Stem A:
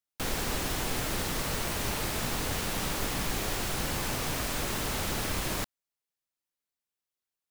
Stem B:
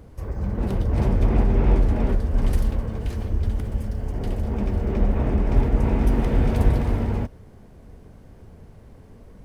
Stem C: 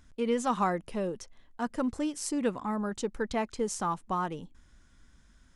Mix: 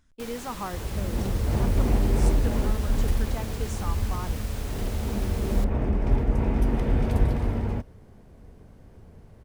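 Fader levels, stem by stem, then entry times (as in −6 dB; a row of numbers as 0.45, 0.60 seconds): −9.0, −3.5, −6.5 decibels; 0.00, 0.55, 0.00 seconds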